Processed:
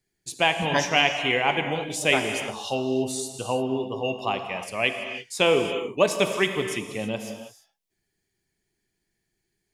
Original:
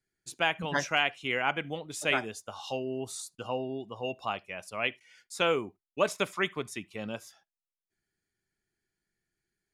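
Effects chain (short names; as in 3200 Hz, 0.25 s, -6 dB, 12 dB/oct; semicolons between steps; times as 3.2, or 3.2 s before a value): bell 1400 Hz -11 dB 0.41 oct; non-linear reverb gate 0.36 s flat, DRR 6 dB; gain +7.5 dB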